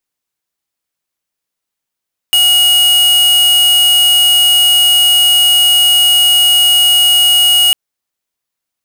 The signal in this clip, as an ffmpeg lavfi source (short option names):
-f lavfi -i "aevalsrc='0.376*(2*lt(mod(2890*t,1),0.5)-1)':d=5.4:s=44100"